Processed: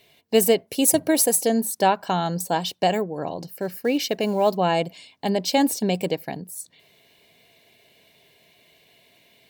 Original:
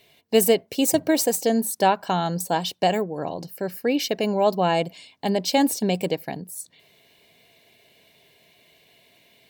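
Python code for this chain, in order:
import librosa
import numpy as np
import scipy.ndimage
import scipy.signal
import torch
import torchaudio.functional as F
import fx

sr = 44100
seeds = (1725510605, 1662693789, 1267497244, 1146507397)

y = fx.peak_eq(x, sr, hz=11000.0, db=13.0, octaves=0.34, at=(0.67, 1.48))
y = fx.quant_float(y, sr, bits=4, at=(3.48, 4.57))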